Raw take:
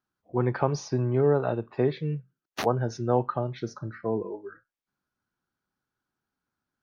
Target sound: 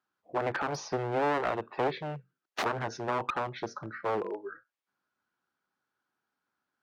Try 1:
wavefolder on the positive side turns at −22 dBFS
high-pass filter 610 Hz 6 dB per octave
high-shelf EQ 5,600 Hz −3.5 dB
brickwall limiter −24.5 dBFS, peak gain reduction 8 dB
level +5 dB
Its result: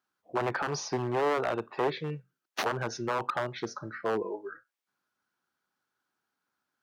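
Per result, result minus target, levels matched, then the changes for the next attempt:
wavefolder on the positive side: distortion −9 dB; 8,000 Hz band +4.5 dB
change: wavefolder on the positive side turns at −28 dBFS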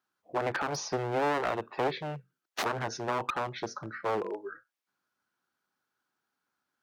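8,000 Hz band +5.5 dB
change: high-shelf EQ 5,600 Hz −14 dB

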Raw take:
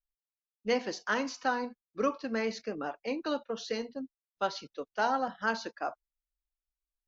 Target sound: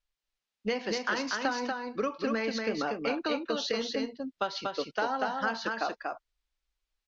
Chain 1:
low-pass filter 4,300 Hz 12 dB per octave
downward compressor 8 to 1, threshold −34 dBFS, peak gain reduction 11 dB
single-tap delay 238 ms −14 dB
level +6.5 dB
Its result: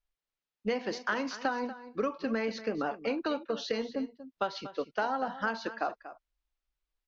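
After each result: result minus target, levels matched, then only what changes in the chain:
echo-to-direct −10.5 dB; 4,000 Hz band −4.5 dB
change: single-tap delay 238 ms −3.5 dB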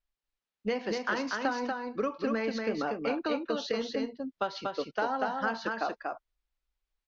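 4,000 Hz band −4.0 dB
add after low-pass filter: high-shelf EQ 2,300 Hz +7.5 dB

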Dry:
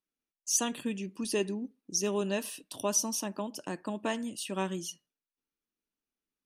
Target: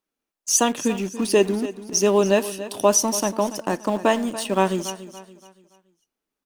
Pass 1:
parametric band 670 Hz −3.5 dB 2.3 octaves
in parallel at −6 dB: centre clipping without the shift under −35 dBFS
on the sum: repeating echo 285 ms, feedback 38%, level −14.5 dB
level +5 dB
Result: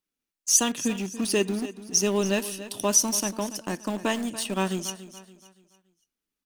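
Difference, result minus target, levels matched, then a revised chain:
500 Hz band −4.5 dB
parametric band 670 Hz +7 dB 2.3 octaves
in parallel at −6 dB: centre clipping without the shift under −35 dBFS
on the sum: repeating echo 285 ms, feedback 38%, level −14.5 dB
level +5 dB

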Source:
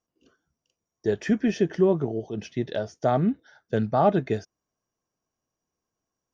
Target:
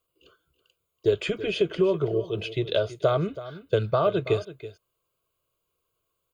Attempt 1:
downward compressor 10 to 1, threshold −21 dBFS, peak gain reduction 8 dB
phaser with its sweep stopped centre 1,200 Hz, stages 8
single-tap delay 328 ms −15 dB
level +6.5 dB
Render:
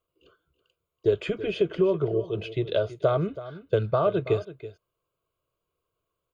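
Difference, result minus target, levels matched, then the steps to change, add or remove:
8,000 Hz band −8.5 dB
add after downward compressor: high-shelf EQ 3,100 Hz +10.5 dB

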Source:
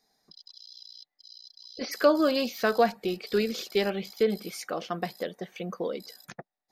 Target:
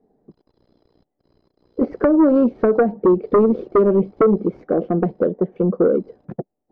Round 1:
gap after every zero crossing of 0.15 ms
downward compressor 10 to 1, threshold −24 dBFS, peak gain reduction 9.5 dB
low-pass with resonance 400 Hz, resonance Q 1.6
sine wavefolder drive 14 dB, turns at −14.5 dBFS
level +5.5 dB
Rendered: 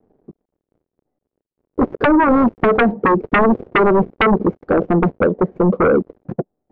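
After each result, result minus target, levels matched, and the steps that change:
sine wavefolder: distortion +14 dB; gap after every zero crossing: distortion +10 dB
change: sine wavefolder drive 7 dB, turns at −14.5 dBFS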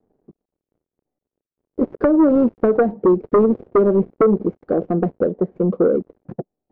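gap after every zero crossing: distortion +10 dB
change: gap after every zero crossing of 0.047 ms

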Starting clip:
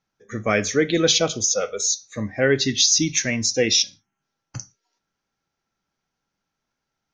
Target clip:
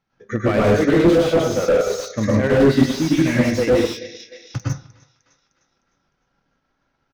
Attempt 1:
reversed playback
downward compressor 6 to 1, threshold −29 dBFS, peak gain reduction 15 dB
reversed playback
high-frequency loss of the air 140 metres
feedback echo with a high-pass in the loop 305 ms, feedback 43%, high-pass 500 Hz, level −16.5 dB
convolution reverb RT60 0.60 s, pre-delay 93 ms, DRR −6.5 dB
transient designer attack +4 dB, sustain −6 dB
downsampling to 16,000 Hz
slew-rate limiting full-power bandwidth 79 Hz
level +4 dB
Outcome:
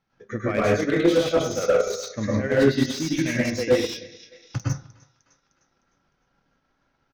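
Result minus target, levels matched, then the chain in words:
downward compressor: peak gain reduction +8.5 dB
reversed playback
downward compressor 6 to 1, threshold −19 dBFS, peak gain reduction 6.5 dB
reversed playback
high-frequency loss of the air 140 metres
feedback echo with a high-pass in the loop 305 ms, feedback 43%, high-pass 500 Hz, level −16.5 dB
convolution reverb RT60 0.60 s, pre-delay 93 ms, DRR −6.5 dB
transient designer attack +4 dB, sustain −6 dB
downsampling to 16,000 Hz
slew-rate limiting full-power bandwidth 79 Hz
level +4 dB

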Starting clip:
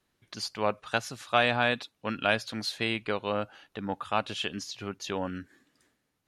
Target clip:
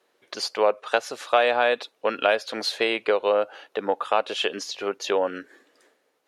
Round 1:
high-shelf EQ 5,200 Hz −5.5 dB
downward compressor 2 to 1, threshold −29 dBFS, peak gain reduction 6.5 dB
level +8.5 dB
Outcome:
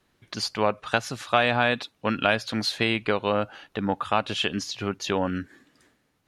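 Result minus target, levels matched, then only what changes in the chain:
500 Hz band −3.5 dB
add first: high-pass with resonance 470 Hz, resonance Q 2.4

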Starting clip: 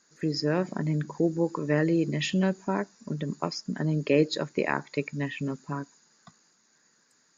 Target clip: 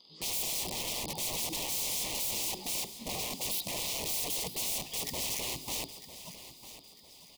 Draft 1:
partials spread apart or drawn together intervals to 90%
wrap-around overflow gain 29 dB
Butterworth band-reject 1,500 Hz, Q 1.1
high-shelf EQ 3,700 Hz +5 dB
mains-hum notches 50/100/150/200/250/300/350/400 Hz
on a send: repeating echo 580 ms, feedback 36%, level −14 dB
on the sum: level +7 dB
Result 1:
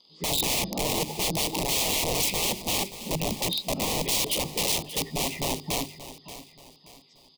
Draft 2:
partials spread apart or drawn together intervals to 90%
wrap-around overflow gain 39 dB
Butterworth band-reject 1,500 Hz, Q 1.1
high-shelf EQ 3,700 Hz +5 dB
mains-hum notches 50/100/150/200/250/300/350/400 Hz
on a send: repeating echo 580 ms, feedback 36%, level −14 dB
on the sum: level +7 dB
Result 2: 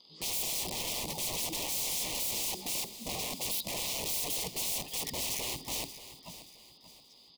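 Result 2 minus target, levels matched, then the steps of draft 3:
echo 371 ms early
partials spread apart or drawn together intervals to 90%
wrap-around overflow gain 39 dB
Butterworth band-reject 1,500 Hz, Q 1.1
high-shelf EQ 3,700 Hz +5 dB
mains-hum notches 50/100/150/200/250/300/350/400 Hz
on a send: repeating echo 951 ms, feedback 36%, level −14 dB
on the sum: level +7 dB

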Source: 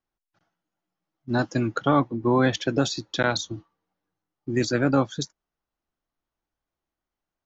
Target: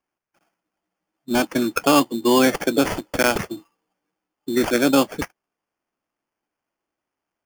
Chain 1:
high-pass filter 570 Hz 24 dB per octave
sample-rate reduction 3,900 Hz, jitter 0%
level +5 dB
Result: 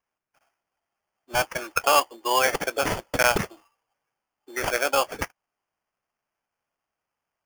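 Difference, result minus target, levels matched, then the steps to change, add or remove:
250 Hz band −13.5 dB
change: high-pass filter 200 Hz 24 dB per octave

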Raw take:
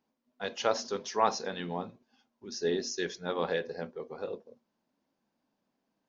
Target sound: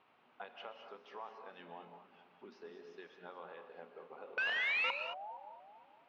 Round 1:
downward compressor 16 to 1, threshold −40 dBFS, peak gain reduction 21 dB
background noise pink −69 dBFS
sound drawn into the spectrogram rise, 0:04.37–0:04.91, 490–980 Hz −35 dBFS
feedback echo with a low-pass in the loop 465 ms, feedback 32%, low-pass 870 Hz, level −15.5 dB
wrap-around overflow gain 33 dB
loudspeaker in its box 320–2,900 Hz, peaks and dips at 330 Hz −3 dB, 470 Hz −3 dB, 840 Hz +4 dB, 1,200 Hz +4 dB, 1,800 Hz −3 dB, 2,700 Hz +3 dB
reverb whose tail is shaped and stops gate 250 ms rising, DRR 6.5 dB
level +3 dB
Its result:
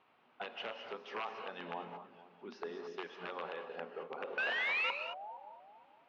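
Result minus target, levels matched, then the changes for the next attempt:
downward compressor: peak gain reduction −8.5 dB
change: downward compressor 16 to 1, threshold −49 dBFS, peak gain reduction 29.5 dB

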